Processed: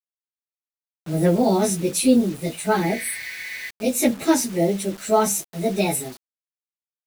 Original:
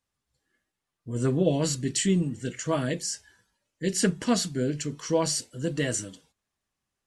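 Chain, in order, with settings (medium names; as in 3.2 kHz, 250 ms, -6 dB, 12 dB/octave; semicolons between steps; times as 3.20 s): frequency-domain pitch shifter +5 st; spectral replace 2.91–3.68 s, 1.5–7.9 kHz before; bit crusher 8-bit; trim +8.5 dB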